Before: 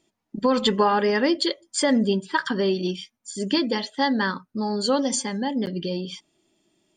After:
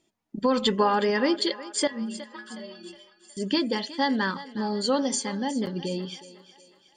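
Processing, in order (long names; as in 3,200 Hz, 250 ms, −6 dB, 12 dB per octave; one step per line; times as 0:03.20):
0:01.87–0:03.37: stiff-string resonator 110 Hz, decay 0.53 s, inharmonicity 0.008
feedback echo with a high-pass in the loop 365 ms, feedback 52%, high-pass 430 Hz, level −14.5 dB
level −2.5 dB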